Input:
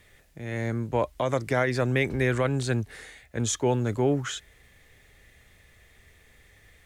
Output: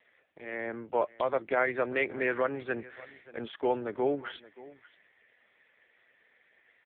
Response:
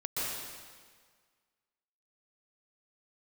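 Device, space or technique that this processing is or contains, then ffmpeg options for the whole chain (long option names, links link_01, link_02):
satellite phone: -filter_complex "[0:a]asettb=1/sr,asplit=3[link_01][link_02][link_03];[link_01]atrim=end=2.414[link_04];[link_02]atrim=start=2.41:end=3.86,asetpts=PTS-STARTPTS,afade=type=in:duration=0.004:curve=qsin,afade=type=out:start_time=1.446:duration=0.004:curve=qsin,acrossover=split=5300[link_05][link_06];[link_06]acompressor=threshold=-48dB:ratio=4:attack=1:release=60[link_07];[link_05][link_07]amix=inputs=2:normalize=0[link_08];[link_03]atrim=start=3.856[link_09];[link_04][link_08]acrossfade=duration=0.004:curve1=hsin:curve2=qsin[link_10];[link_10][link_09]acrossfade=duration=0.004:curve1=qsin:curve2=hsin,highpass=400,lowpass=3100,aecho=1:1:579:0.106" -ar 8000 -c:a libopencore_amrnb -b:a 5150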